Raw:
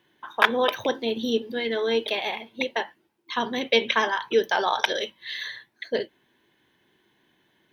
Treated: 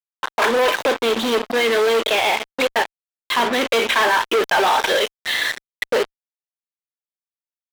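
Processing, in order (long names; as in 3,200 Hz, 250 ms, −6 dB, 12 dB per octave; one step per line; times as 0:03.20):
fuzz pedal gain 41 dB, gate −35 dBFS
bass and treble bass −13 dB, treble −8 dB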